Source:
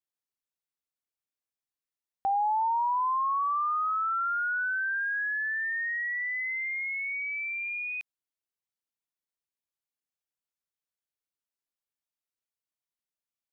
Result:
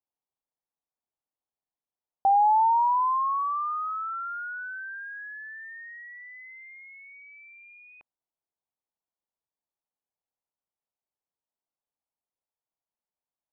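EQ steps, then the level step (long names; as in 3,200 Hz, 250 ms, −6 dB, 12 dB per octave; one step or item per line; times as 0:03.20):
low-pass with resonance 860 Hz, resonance Q 2.1
0.0 dB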